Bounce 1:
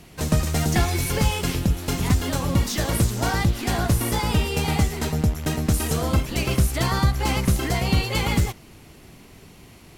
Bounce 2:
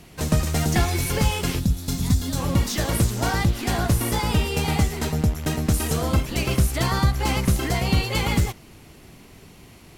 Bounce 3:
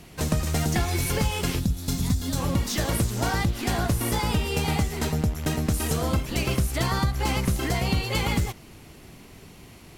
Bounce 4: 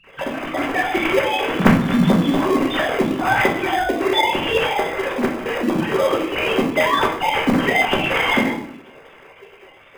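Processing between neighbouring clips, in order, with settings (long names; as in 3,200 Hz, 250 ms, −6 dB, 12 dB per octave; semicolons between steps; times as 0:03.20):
gain on a spectral selection 0:01.60–0:02.38, 280–3,300 Hz −9 dB
downward compressor 3 to 1, threshold −21 dBFS, peak gain reduction 6 dB
three sine waves on the formant tracks; rectangular room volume 79 cubic metres, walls mixed, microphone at 1.1 metres; in parallel at −9.5 dB: decimation without filtering 31×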